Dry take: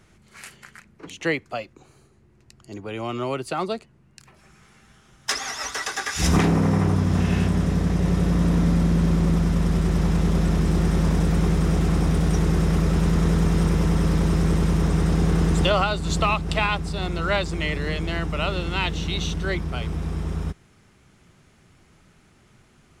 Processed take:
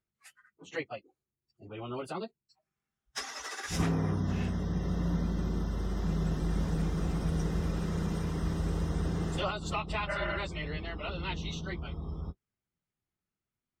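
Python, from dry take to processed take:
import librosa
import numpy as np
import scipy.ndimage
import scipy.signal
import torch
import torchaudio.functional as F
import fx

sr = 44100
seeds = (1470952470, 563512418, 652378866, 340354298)

y = fx.noise_reduce_blind(x, sr, reduce_db=25)
y = fx.spec_repair(y, sr, seeds[0], start_s=16.84, length_s=0.42, low_hz=440.0, high_hz=3100.0, source='after')
y = fx.stretch_vocoder_free(y, sr, factor=0.6)
y = y * librosa.db_to_amplitude(-7.5)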